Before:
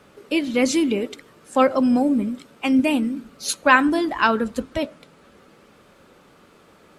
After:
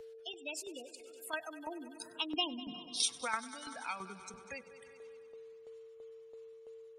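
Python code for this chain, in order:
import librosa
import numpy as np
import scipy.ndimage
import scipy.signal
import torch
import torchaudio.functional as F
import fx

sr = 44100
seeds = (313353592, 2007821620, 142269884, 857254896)

p1 = fx.doppler_pass(x, sr, speed_mps=57, closest_m=11.0, pass_at_s=2.64)
p2 = scipy.signal.sosfilt(scipy.signal.butter(2, 67.0, 'highpass', fs=sr, output='sos'), p1)
p3 = fx.high_shelf(p2, sr, hz=3100.0, db=9.5)
p4 = p3 + 10.0 ** (-22.0 / 20.0) * np.pad(p3, (int(347 * sr / 1000.0), 0))[:len(p3)]
p5 = fx.noise_reduce_blind(p4, sr, reduce_db=13)
p6 = fx.spec_gate(p5, sr, threshold_db=-20, keep='strong')
p7 = p6 + 10.0 ** (-53.0 / 20.0) * np.sin(2.0 * np.pi * 450.0 * np.arange(len(p6)) / sr)
p8 = fx.tremolo_shape(p7, sr, shape='saw_down', hz=3.0, depth_pct=70)
p9 = fx.peak_eq(p8, sr, hz=280.0, db=-13.0, octaves=2.3)
p10 = p9 + fx.echo_heads(p9, sr, ms=97, heads='first and second', feedback_pct=55, wet_db=-21.0, dry=0)
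p11 = fx.band_squash(p10, sr, depth_pct=70)
y = p11 * 10.0 ** (1.5 / 20.0)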